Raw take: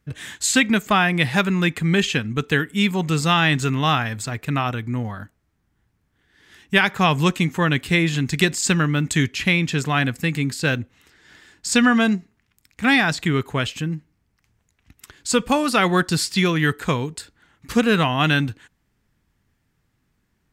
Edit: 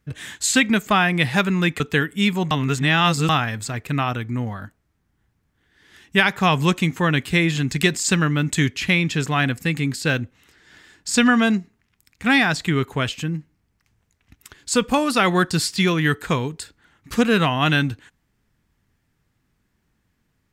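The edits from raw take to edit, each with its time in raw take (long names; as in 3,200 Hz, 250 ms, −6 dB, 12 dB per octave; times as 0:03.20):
0:01.80–0:02.38: remove
0:03.09–0:03.87: reverse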